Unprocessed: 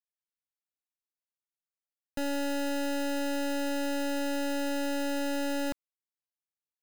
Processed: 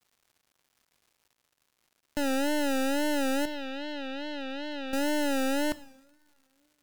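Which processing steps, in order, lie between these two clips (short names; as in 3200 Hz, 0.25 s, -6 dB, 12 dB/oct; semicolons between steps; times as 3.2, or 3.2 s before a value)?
3.45–4.93 ladder low-pass 4300 Hz, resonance 45%; two-slope reverb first 0.78 s, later 3.2 s, from -21 dB, DRR 13.5 dB; crackle 270/s -58 dBFS; wow and flutter 110 cents; gain +3.5 dB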